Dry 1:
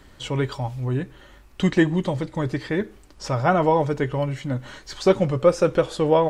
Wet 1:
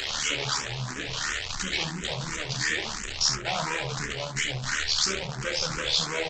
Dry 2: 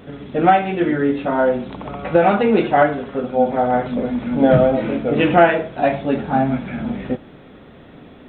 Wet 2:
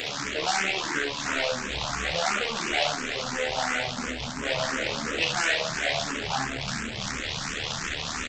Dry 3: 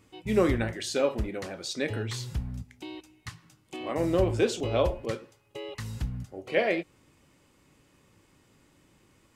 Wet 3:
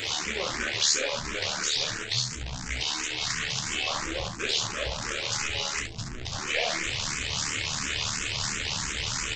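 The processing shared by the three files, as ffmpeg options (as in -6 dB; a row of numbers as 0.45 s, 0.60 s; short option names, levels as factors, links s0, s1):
-filter_complex "[0:a]aeval=exprs='val(0)+0.5*0.112*sgn(val(0))':c=same,asubboost=boost=5:cutoff=140,aeval=exprs='val(0)+0.0141*sin(2*PI*440*n/s)':c=same,aresample=16000,asoftclip=type=hard:threshold=0.141,aresample=44100,tiltshelf=f=890:g=-10,aecho=1:1:31|68:0.447|0.501,flanger=delay=8.1:depth=9.8:regen=-44:speed=1.3:shape=sinusoidal,tremolo=f=75:d=0.571,asplit=2[s0][s1];[s1]afreqshift=2.9[s2];[s0][s2]amix=inputs=2:normalize=1"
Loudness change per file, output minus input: -5.0 LU, -9.5 LU, +1.5 LU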